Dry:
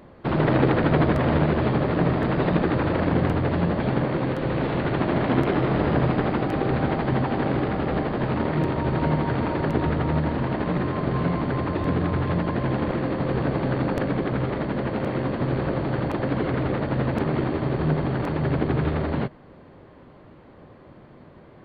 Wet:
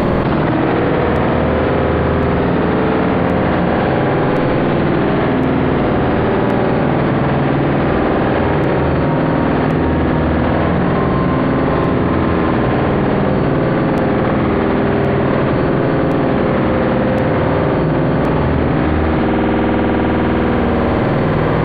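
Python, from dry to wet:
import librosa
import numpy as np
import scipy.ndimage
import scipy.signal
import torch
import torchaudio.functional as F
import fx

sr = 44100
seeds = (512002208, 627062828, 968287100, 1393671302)

y = fx.rev_spring(x, sr, rt60_s=3.8, pass_ms=(50,), chirp_ms=25, drr_db=-3.5)
y = fx.env_flatten(y, sr, amount_pct=100)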